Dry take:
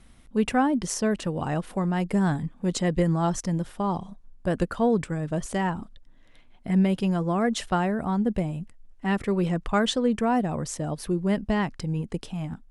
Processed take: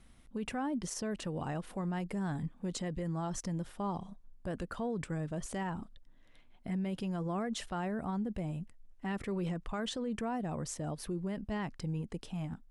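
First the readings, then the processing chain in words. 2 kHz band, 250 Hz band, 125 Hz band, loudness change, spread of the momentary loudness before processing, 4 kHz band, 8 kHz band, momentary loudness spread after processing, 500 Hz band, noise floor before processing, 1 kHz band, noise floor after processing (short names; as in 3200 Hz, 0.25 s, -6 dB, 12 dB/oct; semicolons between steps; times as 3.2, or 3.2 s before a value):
-12.0 dB, -11.5 dB, -10.5 dB, -11.5 dB, 9 LU, -10.5 dB, -8.5 dB, 5 LU, -12.5 dB, -52 dBFS, -12.0 dB, -59 dBFS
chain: limiter -22.5 dBFS, peak gain reduction 10.5 dB; gain -6.5 dB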